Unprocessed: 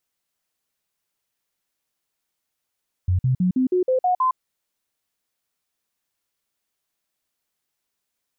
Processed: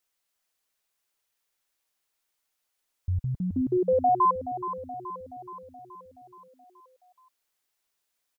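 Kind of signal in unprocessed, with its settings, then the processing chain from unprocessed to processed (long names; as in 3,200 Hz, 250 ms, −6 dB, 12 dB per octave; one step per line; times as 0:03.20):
stepped sweep 91 Hz up, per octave 2, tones 8, 0.11 s, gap 0.05 s −16 dBFS
parametric band 150 Hz −9.5 dB 2 octaves
repeating echo 425 ms, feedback 58%, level −11.5 dB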